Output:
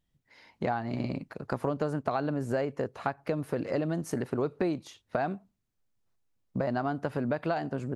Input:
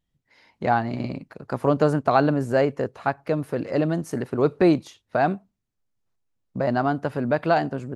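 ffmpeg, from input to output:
-af "acompressor=threshold=-27dB:ratio=6"

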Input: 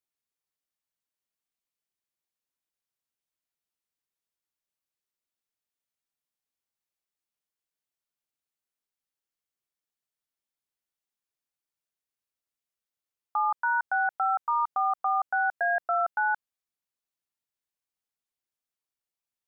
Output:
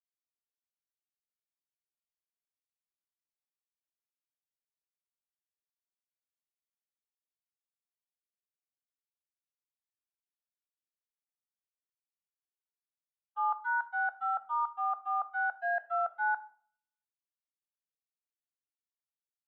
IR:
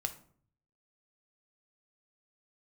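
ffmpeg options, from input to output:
-filter_complex "[0:a]agate=range=-59dB:threshold=-24dB:ratio=16:detection=peak,asplit=2[a][b];[1:a]atrim=start_sample=2205,lowshelf=f=400:g=-11.5[c];[b][c]afir=irnorm=-1:irlink=0,volume=3.5dB[d];[a][d]amix=inputs=2:normalize=0,volume=-7dB"

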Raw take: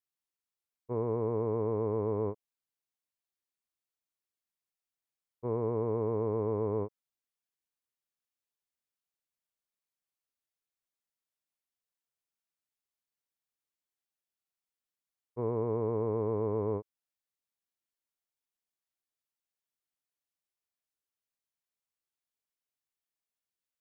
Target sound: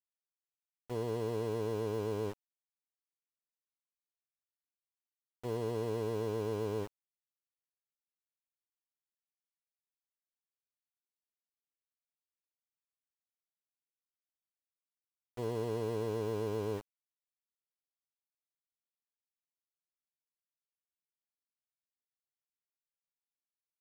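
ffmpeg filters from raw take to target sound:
-af "adynamicsmooth=sensitivity=6:basefreq=1.7k,aeval=exprs='val(0)*gte(abs(val(0)),0.0112)':c=same,volume=-4dB"

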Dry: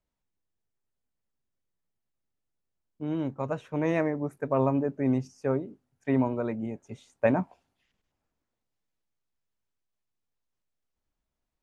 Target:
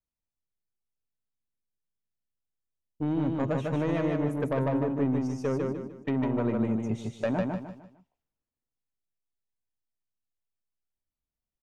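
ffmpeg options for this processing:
-filter_complex "[0:a]agate=range=-20dB:threshold=-55dB:ratio=16:detection=peak,lowshelf=f=330:g=5.5,acompressor=threshold=-28dB:ratio=6,asoftclip=type=tanh:threshold=-27dB,asplit=2[a][b];[b]aecho=0:1:151|302|453|604:0.708|0.241|0.0818|0.0278[c];[a][c]amix=inputs=2:normalize=0,volume=5.5dB"

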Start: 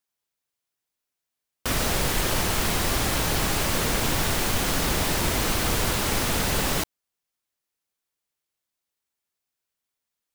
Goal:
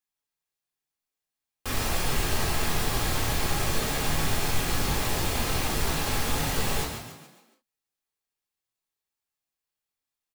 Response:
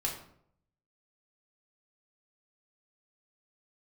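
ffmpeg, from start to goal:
-filter_complex "[0:a]asplit=6[a][b][c][d][e][f];[b]adelay=141,afreqshift=43,volume=-7dB[g];[c]adelay=282,afreqshift=86,volume=-13.9dB[h];[d]adelay=423,afreqshift=129,volume=-20.9dB[i];[e]adelay=564,afreqshift=172,volume=-27.8dB[j];[f]adelay=705,afreqshift=215,volume=-34.7dB[k];[a][g][h][i][j][k]amix=inputs=6:normalize=0[l];[1:a]atrim=start_sample=2205,atrim=end_sample=3528[m];[l][m]afir=irnorm=-1:irlink=0,volume=-8dB"

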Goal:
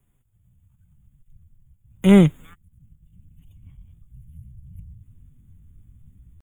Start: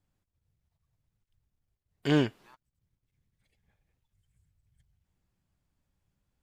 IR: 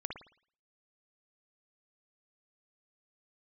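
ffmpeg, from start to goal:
-filter_complex "[0:a]aemphasis=mode=production:type=cd,asetrate=58866,aresample=44100,atempo=0.749154,asubboost=boost=10:cutoff=200,acrossover=split=150|2100[a][b][c];[a]acontrast=61[d];[d][b][c]amix=inputs=3:normalize=0,asuperstop=centerf=4900:order=20:qfactor=1.7,volume=7dB"

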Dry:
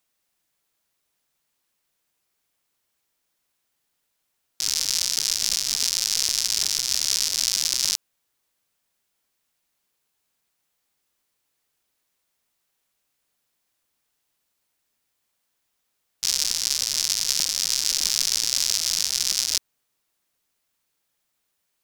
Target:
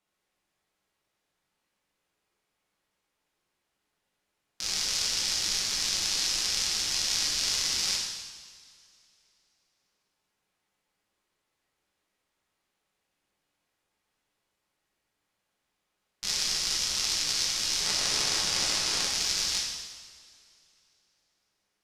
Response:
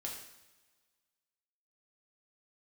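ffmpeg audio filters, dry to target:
-filter_complex "[0:a]asettb=1/sr,asplit=3[a][b][c];[a]atrim=end=17.804[d];[b]atrim=start=17.8:end=19.07,asetpts=PTS-STARTPTS,afade=t=in:d=0.004:c=qsin,afade=t=out:st=1.266:d=0.004:c=qsin,aeval=exprs='0.841*(cos(1*acos(clip(val(0)/0.841,-1,1)))-cos(1*PI/2))+0.0422*(cos(4*acos(clip(val(0)/0.841,-1,1)))-cos(4*PI/2))':c=same[e];[c]atrim=start=19.066[f];[d][e]acrossfade=d=0.004:c1=hsin:c2=qsin[g];[g][f]acrossfade=d=0.004:c1=qsin:c2=hsin,lowpass=f=2.4k:p=1[h];[1:a]atrim=start_sample=2205,asetrate=26901,aresample=44100[i];[h][i]afir=irnorm=-1:irlink=0"

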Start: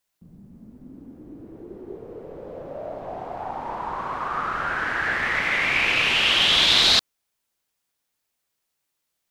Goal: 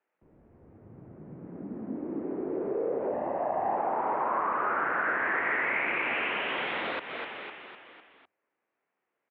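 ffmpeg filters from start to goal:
-filter_complex "[0:a]tiltshelf=f=640:g=5.5,asplit=2[a][b];[b]asplit=5[c][d][e][f][g];[c]adelay=252,afreqshift=-50,volume=-15dB[h];[d]adelay=504,afreqshift=-100,volume=-20.4dB[i];[e]adelay=756,afreqshift=-150,volume=-25.7dB[j];[f]adelay=1008,afreqshift=-200,volume=-31.1dB[k];[g]adelay=1260,afreqshift=-250,volume=-36.4dB[l];[h][i][j][k][l]amix=inputs=5:normalize=0[m];[a][m]amix=inputs=2:normalize=0,acompressor=threshold=-28dB:ratio=6,highpass=f=470:t=q:w=0.5412,highpass=f=470:t=q:w=1.307,lowpass=f=2.5k:t=q:w=0.5176,lowpass=f=2.5k:t=q:w=0.7071,lowpass=f=2.5k:t=q:w=1.932,afreqshift=-150,asettb=1/sr,asplit=3[n][o][p];[n]atrim=end=3.114[q];[o]atrim=start=3.11:end=3.77,asetpts=PTS-STARTPTS,afade=t=in:d=0.004:c=qsin,afade=t=out:st=0.656:d=0.004:c=qsin,aecho=1:1:1.1:0.52,atrim=end_sample=29106[r];[p]atrim=start=3.766[s];[q][r]acrossfade=d=0.004:c1=hsin:c2=qsin[t];[t][s]acrossfade=d=0.004:c1=qsin:c2=hsin,asplit=2[u][v];[v]alimiter=level_in=8.5dB:limit=-24dB:level=0:latency=1:release=67,volume=-8.5dB,volume=1dB[w];[u][w]amix=inputs=2:normalize=0,volume=1dB"

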